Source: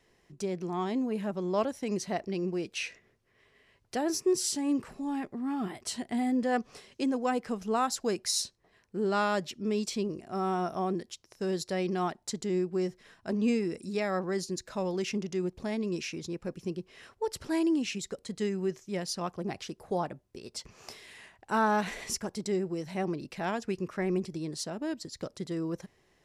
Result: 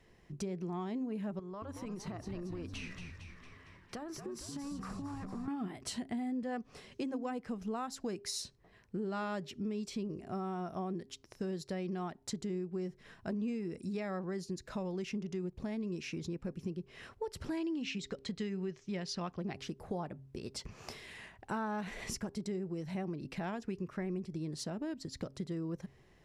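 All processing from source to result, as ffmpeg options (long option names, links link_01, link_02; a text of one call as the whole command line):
ffmpeg -i in.wav -filter_complex "[0:a]asettb=1/sr,asplit=3[link_01][link_02][link_03];[link_01]atrim=end=1.394[link_04];[link_02]atrim=start=1.39:end=5.48,asetpts=PTS-STARTPTS,afade=type=in:duration=0.004:curve=qsin,afade=type=out:start_time=4.086:duration=0.004:curve=qsin,equalizer=frequency=1200:width=3.2:gain=13.5,acompressor=threshold=-41dB:ratio=16:attack=3.2:release=140:knee=1:detection=peak,asplit=9[link_05][link_06][link_07][link_08][link_09][link_10][link_11][link_12][link_13];[link_06]adelay=228,afreqshift=-90,volume=-7.5dB[link_14];[link_07]adelay=456,afreqshift=-180,volume=-11.8dB[link_15];[link_08]adelay=684,afreqshift=-270,volume=-16.1dB[link_16];[link_09]adelay=912,afreqshift=-360,volume=-20.4dB[link_17];[link_10]adelay=1140,afreqshift=-450,volume=-24.7dB[link_18];[link_11]adelay=1368,afreqshift=-540,volume=-29dB[link_19];[link_12]adelay=1596,afreqshift=-630,volume=-33.3dB[link_20];[link_13]adelay=1824,afreqshift=-720,volume=-37.6dB[link_21];[link_05][link_14][link_15][link_16][link_17][link_18][link_19][link_20][link_21]amix=inputs=9:normalize=0,atrim=end_sample=180369[link_22];[link_03]atrim=start=5.476[link_23];[link_04][link_22]acrossfade=duration=0.004:curve1=hsin:curve2=qsin[link_24];[link_24][link_23]acrossfade=duration=0.004:curve1=qsin:curve2=hsin,asettb=1/sr,asplit=3[link_25][link_26][link_27];[link_25]atrim=end=17.574[link_28];[link_26]atrim=start=17.57:end=19.55,asetpts=PTS-STARTPTS,afade=type=in:duration=0.004:curve=qsin,afade=type=out:start_time=1.976:duration=0.004:curve=qsin,lowpass=4300,highshelf=frequency=2100:gain=10[link_29];[link_27]atrim=start=19.546[link_30];[link_28][link_29]acrossfade=duration=0.004:curve1=hsin:curve2=qsin[link_31];[link_31][link_30]acrossfade=duration=0.004:curve1=qsin:curve2=hsin,bass=frequency=250:gain=7,treble=frequency=4000:gain=-5,bandreject=frequency=134.6:width_type=h:width=4,bandreject=frequency=269.2:width_type=h:width=4,bandreject=frequency=403.8:width_type=h:width=4,acompressor=threshold=-38dB:ratio=4,volume=1dB" out.wav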